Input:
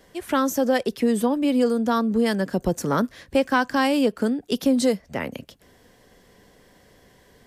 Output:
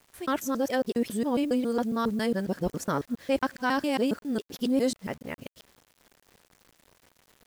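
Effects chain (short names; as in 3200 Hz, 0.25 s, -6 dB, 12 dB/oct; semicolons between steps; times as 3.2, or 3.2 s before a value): local time reversal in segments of 0.137 s; requantised 8-bit, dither none; gain -6 dB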